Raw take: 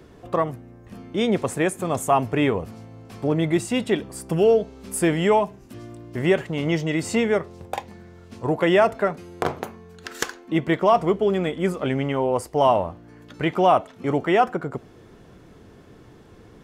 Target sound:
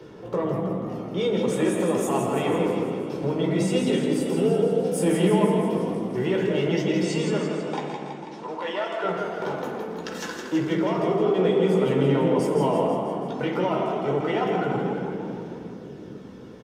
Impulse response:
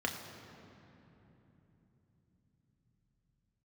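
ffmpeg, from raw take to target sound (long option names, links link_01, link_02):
-filter_complex "[0:a]alimiter=limit=-17dB:level=0:latency=1:release=44,flanger=delay=0:depth=7.8:regen=46:speed=0.13:shape=sinusoidal,asoftclip=type=tanh:threshold=-21dB,asettb=1/sr,asplit=3[link_01][link_02][link_03];[link_01]atrim=end=7.024[link_04];[link_02]atrim=start=7.02:end=9.04,asetpts=PTS-STARTPTS,afade=type=in:duration=0.004:curve=qsin,afade=type=out:start_time=2.016:duration=0.004:curve=qsin,highpass=640,lowpass=7900[link_05];[link_03]atrim=start=9.036[link_06];[link_04][link_05]acrossfade=duration=0.004:curve1=hsin:curve2=qsin[link_07];[link_07][link_06]acrossfade=duration=0.004:curve1=qsin:curve2=hsin,asplit=9[link_08][link_09][link_10][link_11][link_12][link_13][link_14][link_15][link_16];[link_09]adelay=164,afreqshift=31,volume=-6dB[link_17];[link_10]adelay=328,afreqshift=62,volume=-10.4dB[link_18];[link_11]adelay=492,afreqshift=93,volume=-14.9dB[link_19];[link_12]adelay=656,afreqshift=124,volume=-19.3dB[link_20];[link_13]adelay=820,afreqshift=155,volume=-23.7dB[link_21];[link_14]adelay=984,afreqshift=186,volume=-28.2dB[link_22];[link_15]adelay=1148,afreqshift=217,volume=-32.6dB[link_23];[link_16]adelay=1312,afreqshift=248,volume=-37.1dB[link_24];[link_08][link_17][link_18][link_19][link_20][link_21][link_22][link_23][link_24]amix=inputs=9:normalize=0[link_25];[1:a]atrim=start_sample=2205,asetrate=83790,aresample=44100[link_26];[link_25][link_26]afir=irnorm=-1:irlink=0,volume=5.5dB"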